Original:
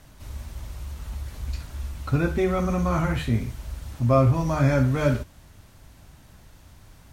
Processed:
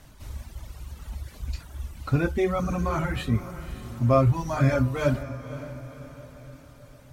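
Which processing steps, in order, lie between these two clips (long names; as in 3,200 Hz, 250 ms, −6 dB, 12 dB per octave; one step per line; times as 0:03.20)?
reverb reduction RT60 1.9 s
on a send: feedback delay with all-pass diffusion 547 ms, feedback 49%, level −13.5 dB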